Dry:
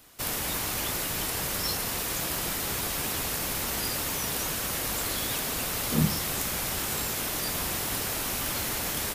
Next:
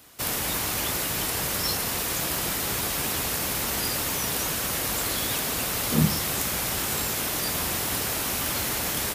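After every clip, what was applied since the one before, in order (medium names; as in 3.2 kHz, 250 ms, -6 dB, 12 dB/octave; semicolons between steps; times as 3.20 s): high-pass 44 Hz; trim +3 dB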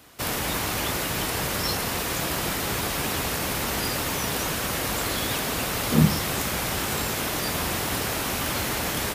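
treble shelf 4.7 kHz -7.5 dB; trim +3.5 dB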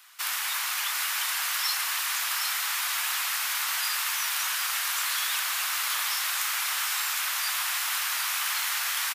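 inverse Chebyshev high-pass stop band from 320 Hz, stop band 60 dB; delay 760 ms -6 dB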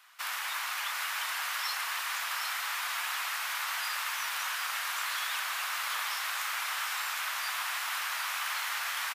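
treble shelf 3.3 kHz -11 dB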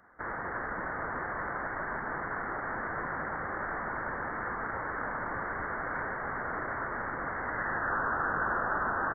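high-pass sweep 380 Hz -> 1.2 kHz, 7.25–7.94 s; frequency inversion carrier 2.7 kHz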